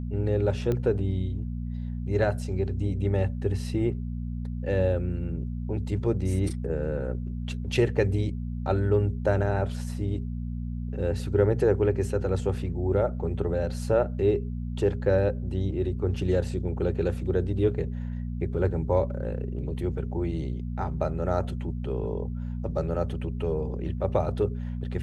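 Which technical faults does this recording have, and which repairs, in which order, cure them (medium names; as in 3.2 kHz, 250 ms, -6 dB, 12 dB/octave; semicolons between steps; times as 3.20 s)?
hum 60 Hz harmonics 4 -32 dBFS
0.72 s: pop -17 dBFS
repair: de-click; de-hum 60 Hz, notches 4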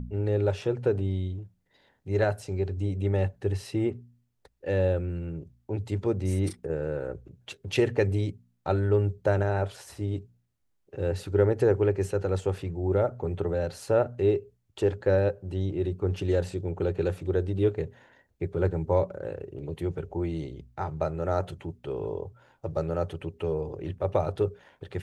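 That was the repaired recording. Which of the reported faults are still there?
nothing left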